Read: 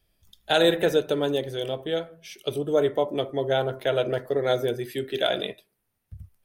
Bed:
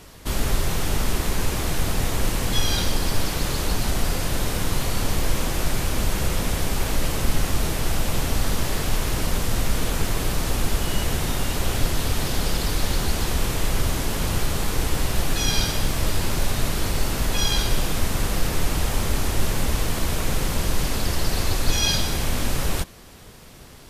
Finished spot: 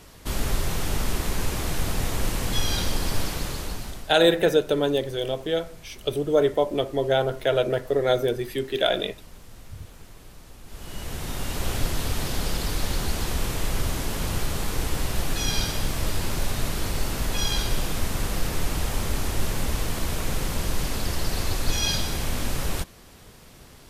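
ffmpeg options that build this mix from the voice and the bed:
ffmpeg -i stem1.wav -i stem2.wav -filter_complex "[0:a]adelay=3600,volume=2dB[link_01];[1:a]volume=16.5dB,afade=type=out:start_time=3.2:duration=0.94:silence=0.1,afade=type=in:start_time=10.65:duration=1.04:silence=0.105925[link_02];[link_01][link_02]amix=inputs=2:normalize=0" out.wav

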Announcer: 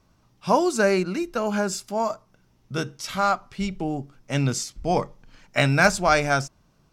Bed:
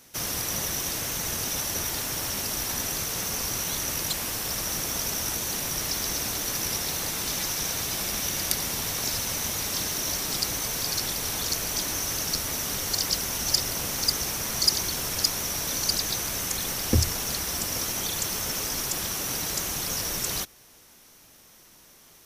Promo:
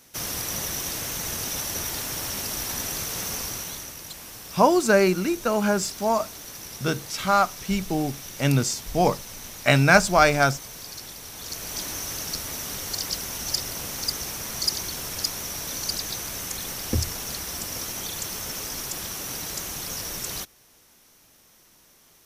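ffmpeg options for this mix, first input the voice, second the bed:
ffmpeg -i stem1.wav -i stem2.wav -filter_complex "[0:a]adelay=4100,volume=2dB[link_01];[1:a]volume=7dB,afade=type=out:start_time=3.32:duration=0.62:silence=0.316228,afade=type=in:start_time=11.33:duration=0.48:silence=0.421697[link_02];[link_01][link_02]amix=inputs=2:normalize=0" out.wav

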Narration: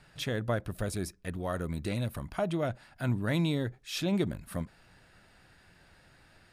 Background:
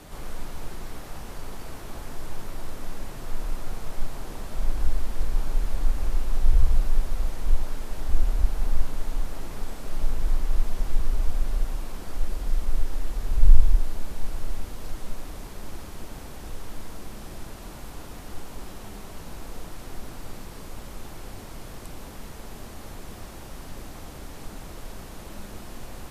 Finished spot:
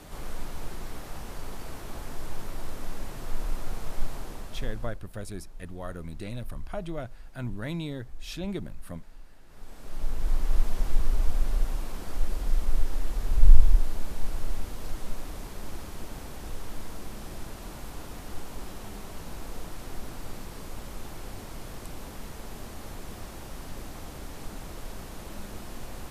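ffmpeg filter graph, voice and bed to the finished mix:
ffmpeg -i stem1.wav -i stem2.wav -filter_complex "[0:a]adelay=4350,volume=-5dB[link_01];[1:a]volume=19.5dB,afade=type=out:start_time=4.12:duration=0.87:silence=0.1,afade=type=in:start_time=9.46:duration=1.08:silence=0.0944061[link_02];[link_01][link_02]amix=inputs=2:normalize=0" out.wav

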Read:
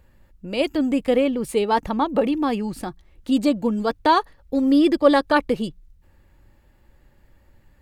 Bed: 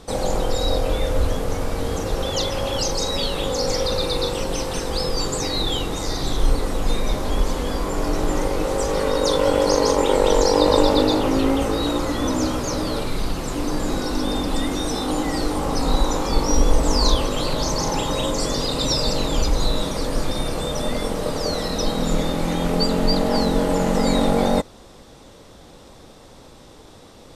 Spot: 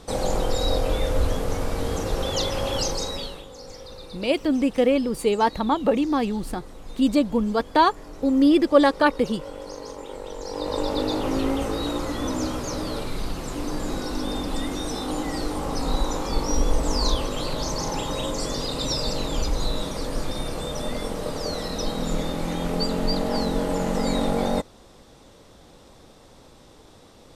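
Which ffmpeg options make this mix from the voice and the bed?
ffmpeg -i stem1.wav -i stem2.wav -filter_complex "[0:a]adelay=3700,volume=-0.5dB[link_01];[1:a]volume=12dB,afade=type=out:start_time=2.8:duration=0.65:silence=0.141254,afade=type=in:start_time=10.39:duration=0.94:silence=0.199526[link_02];[link_01][link_02]amix=inputs=2:normalize=0" out.wav

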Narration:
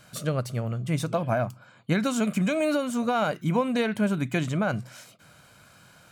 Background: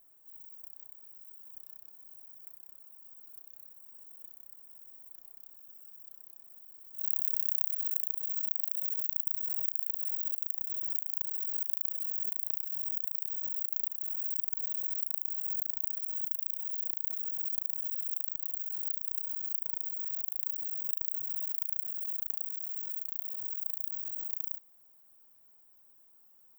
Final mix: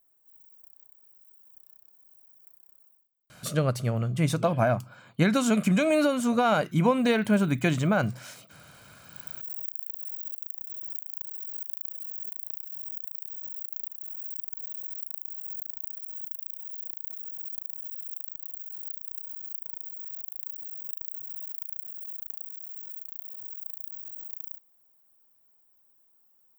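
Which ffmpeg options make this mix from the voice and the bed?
ffmpeg -i stem1.wav -i stem2.wav -filter_complex "[0:a]adelay=3300,volume=2dB[link_01];[1:a]volume=20dB,afade=type=out:start_time=2.85:duration=0.23:silence=0.0707946,afade=type=in:start_time=9.04:duration=0.44:silence=0.0562341[link_02];[link_01][link_02]amix=inputs=2:normalize=0" out.wav

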